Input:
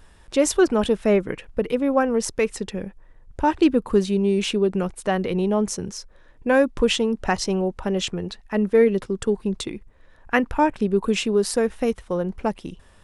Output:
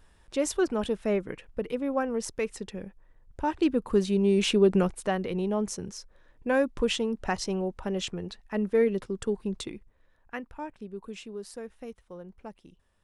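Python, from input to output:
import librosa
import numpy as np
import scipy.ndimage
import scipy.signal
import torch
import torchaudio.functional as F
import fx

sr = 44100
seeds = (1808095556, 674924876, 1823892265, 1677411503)

y = fx.gain(x, sr, db=fx.line((3.51, -8.5), (4.77, 1.0), (5.19, -7.0), (9.68, -7.0), (10.48, -19.0)))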